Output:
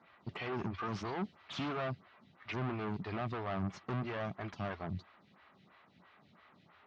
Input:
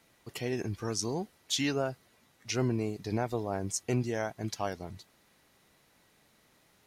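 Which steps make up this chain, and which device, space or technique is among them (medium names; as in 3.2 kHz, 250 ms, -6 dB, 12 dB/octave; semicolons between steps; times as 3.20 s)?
0.74–1.73 s: treble shelf 3.4 kHz +6.5 dB; vibe pedal into a guitar amplifier (lamp-driven phase shifter 3 Hz; valve stage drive 42 dB, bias 0.55; cabinet simulation 83–3600 Hz, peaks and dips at 90 Hz +5 dB, 180 Hz +6 dB, 310 Hz -4 dB, 480 Hz -8 dB, 1.2 kHz +7 dB); trim +8.5 dB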